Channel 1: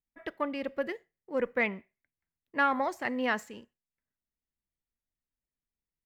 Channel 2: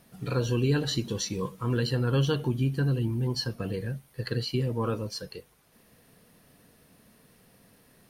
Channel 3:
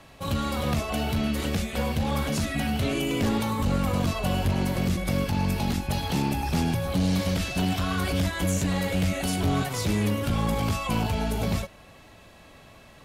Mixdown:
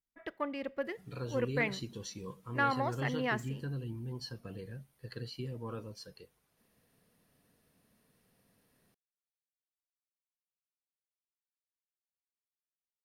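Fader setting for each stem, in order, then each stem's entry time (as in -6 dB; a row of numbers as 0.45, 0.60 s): -4.0 dB, -12.5 dB, off; 0.00 s, 0.85 s, off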